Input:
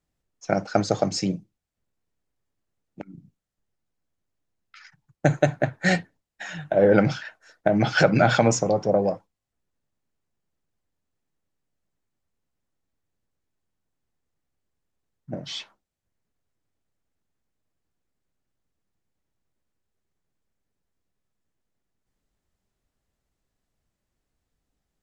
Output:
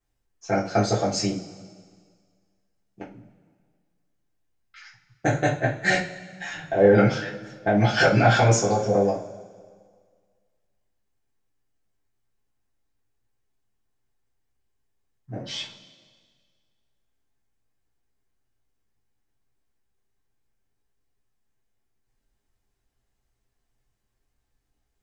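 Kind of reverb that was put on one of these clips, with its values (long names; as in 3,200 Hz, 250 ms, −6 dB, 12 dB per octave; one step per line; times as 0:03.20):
coupled-rooms reverb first 0.28 s, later 1.8 s, from −20 dB, DRR −9 dB
level −7.5 dB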